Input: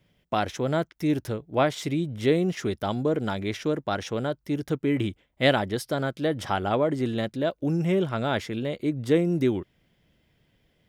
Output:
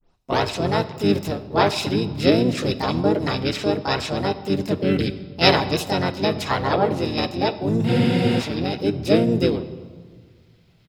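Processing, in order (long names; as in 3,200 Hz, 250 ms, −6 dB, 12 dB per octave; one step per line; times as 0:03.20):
turntable start at the beginning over 0.42 s
parametric band 3,900 Hz +13.5 dB 0.22 octaves
pitch-shifted copies added −7 semitones −3 dB, −5 semitones −9 dB, +5 semitones 0 dB
on a send at −11.5 dB: convolution reverb RT60 1.7 s, pre-delay 5 ms
on the sum: frozen spectrum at 0:07.89, 0.51 s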